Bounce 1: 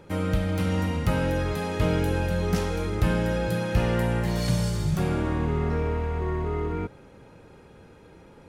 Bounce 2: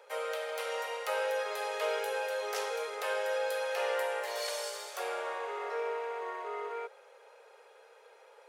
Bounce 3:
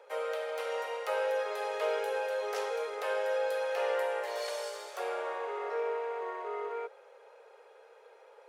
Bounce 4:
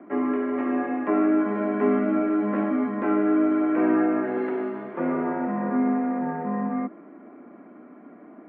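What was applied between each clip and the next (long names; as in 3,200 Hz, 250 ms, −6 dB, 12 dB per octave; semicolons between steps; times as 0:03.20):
Butterworth high-pass 440 Hz 72 dB per octave; level −2.5 dB
spectral tilt −2 dB per octave
single-sideband voice off tune −210 Hz 350–2,300 Hz; low-shelf EQ 470 Hz +6.5 dB; level +6.5 dB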